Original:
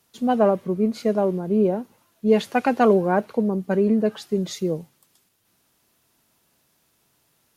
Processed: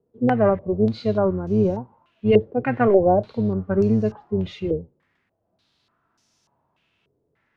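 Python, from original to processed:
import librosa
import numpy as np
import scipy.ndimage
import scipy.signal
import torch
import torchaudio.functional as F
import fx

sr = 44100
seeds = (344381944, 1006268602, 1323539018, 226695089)

y = fx.octave_divider(x, sr, octaves=1, level_db=-5.0)
y = fx.hpss(y, sr, part='percussive', gain_db=-11)
y = fx.filter_held_lowpass(y, sr, hz=3.4, low_hz=450.0, high_hz=5800.0)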